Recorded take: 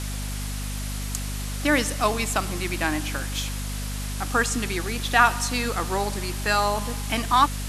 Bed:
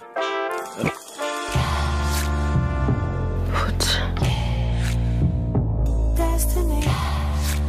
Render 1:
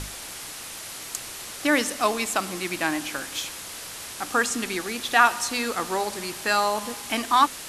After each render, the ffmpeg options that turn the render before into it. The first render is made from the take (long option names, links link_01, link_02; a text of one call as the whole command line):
ffmpeg -i in.wav -af "bandreject=frequency=50:width_type=h:width=6,bandreject=frequency=100:width_type=h:width=6,bandreject=frequency=150:width_type=h:width=6,bandreject=frequency=200:width_type=h:width=6,bandreject=frequency=250:width_type=h:width=6" out.wav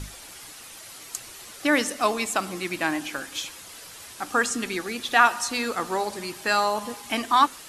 ffmpeg -i in.wav -af "afftdn=noise_reduction=8:noise_floor=-38" out.wav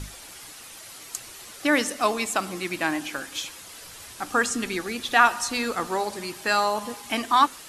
ffmpeg -i in.wav -filter_complex "[0:a]asettb=1/sr,asplit=3[link_01][link_02][link_03];[link_01]atrim=end=3.804[link_04];[link_02]atrim=start=3.8:end=5.87,asetpts=PTS-STARTPTS,afade=type=in:duration=0.004:curve=qsin,afade=type=out:start_time=2.066:duration=0.004:curve=qsin,lowshelf=frequency=95:gain=8[link_05];[link_03]atrim=start=5.866[link_06];[link_04][link_05]acrossfade=duration=0.004:curve1=hsin:curve2=qsin[link_07];[link_07][link_06]acrossfade=duration=0.004:curve1=qsin:curve2=hsin" out.wav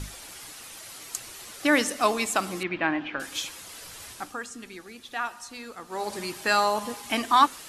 ffmpeg -i in.wav -filter_complex "[0:a]asettb=1/sr,asplit=3[link_01][link_02][link_03];[link_01]atrim=end=2.634[link_04];[link_02]atrim=start=2.63:end=3.2,asetpts=PTS-STARTPTS,afade=type=in:duration=0.004:curve=qsin,afade=type=out:start_time=0.566:duration=0.004:curve=qsin,lowpass=frequency=3000:width=0.5412,lowpass=frequency=3000:width=1.3066[link_05];[link_03]atrim=start=3.196[link_06];[link_04][link_05]acrossfade=duration=0.004:curve1=hsin:curve2=qsin[link_07];[link_07][link_06]acrossfade=duration=0.004:curve1=qsin:curve2=hsin,asplit=3[link_08][link_09][link_10];[link_08]atrim=end=4.37,asetpts=PTS-STARTPTS,afade=type=out:start_time=4.1:duration=0.27:silence=0.211349[link_11];[link_09]atrim=start=4.37:end=5.88,asetpts=PTS-STARTPTS,volume=-13.5dB[link_12];[link_10]atrim=start=5.88,asetpts=PTS-STARTPTS,afade=type=in:duration=0.27:silence=0.211349[link_13];[link_11][link_12][link_13]concat=n=3:v=0:a=1" out.wav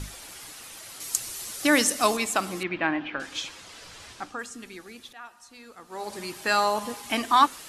ffmpeg -i in.wav -filter_complex "[0:a]asettb=1/sr,asplit=3[link_01][link_02][link_03];[link_01]atrim=end=1.004[link_04];[link_02]atrim=start=1:end=2.17,asetpts=PTS-STARTPTS,afade=type=in:duration=0.004:curve=qsin,afade=type=out:start_time=1.166:duration=0.004:curve=qsin,bass=frequency=250:gain=3,treble=frequency=4000:gain=8[link_05];[link_03]atrim=start=2.166[link_06];[link_04][link_05]acrossfade=duration=0.004:curve1=hsin:curve2=qsin[link_07];[link_07][link_06]acrossfade=duration=0.004:curve1=qsin:curve2=hsin,asettb=1/sr,asplit=3[link_08][link_09][link_10];[link_08]atrim=end=2.874[link_11];[link_09]atrim=start=2.87:end=4.39,asetpts=PTS-STARTPTS,afade=type=in:duration=0.004:curve=qsin,afade=type=out:start_time=1.516:duration=0.004:curve=qsin,lowpass=6100[link_12];[link_10]atrim=start=4.386[link_13];[link_11][link_12]acrossfade=duration=0.004:curve1=hsin:curve2=qsin[link_14];[link_14][link_13]acrossfade=duration=0.004:curve1=qsin:curve2=hsin,asplit=2[link_15][link_16];[link_15]atrim=end=5.13,asetpts=PTS-STARTPTS,afade=type=out:start_time=5.126:duration=0.004:curve=hsin:silence=0.177828[link_17];[link_16]atrim=start=5.13,asetpts=PTS-STARTPTS,afade=type=in:duration=1.54:silence=0.177828[link_18];[link_17][link_18]concat=n=2:v=0:a=1" out.wav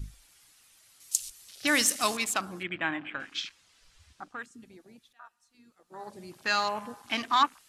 ffmpeg -i in.wav -af "afwtdn=0.0126,equalizer=frequency=450:width_type=o:width=2.8:gain=-9" out.wav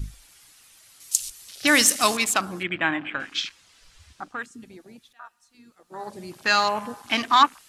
ffmpeg -i in.wav -af "volume=7dB,alimiter=limit=-1dB:level=0:latency=1" out.wav